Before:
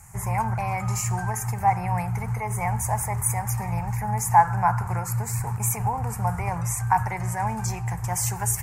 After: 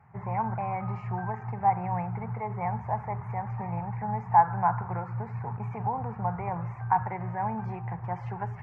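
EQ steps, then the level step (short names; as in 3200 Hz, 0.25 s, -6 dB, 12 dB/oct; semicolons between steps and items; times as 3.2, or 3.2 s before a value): HPF 180 Hz 12 dB/oct; air absorption 370 m; tape spacing loss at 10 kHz 37 dB; +1.5 dB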